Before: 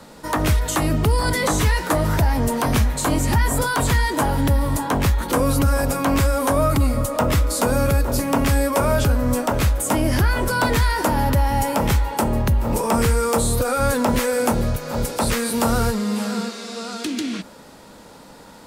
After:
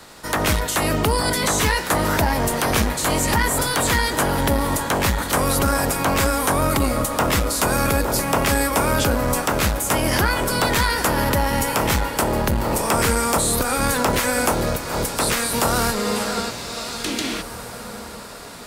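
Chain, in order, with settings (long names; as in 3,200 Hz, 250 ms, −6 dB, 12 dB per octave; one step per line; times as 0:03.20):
ceiling on every frequency bin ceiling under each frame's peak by 14 dB
on a send: feedback delay with all-pass diffusion 1,904 ms, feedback 43%, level −14.5 dB
on the sum: saturating transformer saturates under 270 Hz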